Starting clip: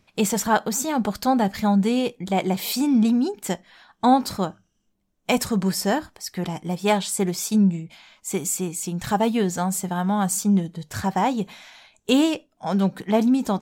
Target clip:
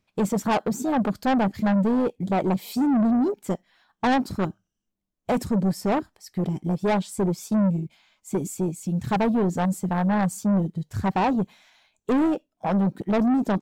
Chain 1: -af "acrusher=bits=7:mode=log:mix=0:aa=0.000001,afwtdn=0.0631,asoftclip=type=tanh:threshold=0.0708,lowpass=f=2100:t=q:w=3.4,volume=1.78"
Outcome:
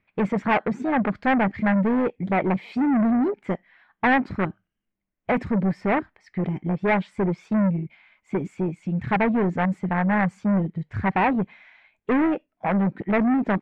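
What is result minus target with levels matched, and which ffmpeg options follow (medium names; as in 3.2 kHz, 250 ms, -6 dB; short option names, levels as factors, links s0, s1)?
2 kHz band +7.0 dB
-af "acrusher=bits=7:mode=log:mix=0:aa=0.000001,afwtdn=0.0631,asoftclip=type=tanh:threshold=0.0708,volume=1.78"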